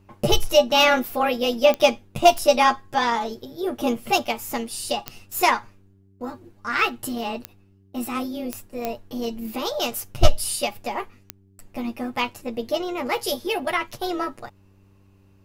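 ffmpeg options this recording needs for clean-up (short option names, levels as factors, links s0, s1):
-af "adeclick=t=4,bandreject=f=97.3:t=h:w=4,bandreject=f=194.6:t=h:w=4,bandreject=f=291.9:t=h:w=4,bandreject=f=389.2:t=h:w=4"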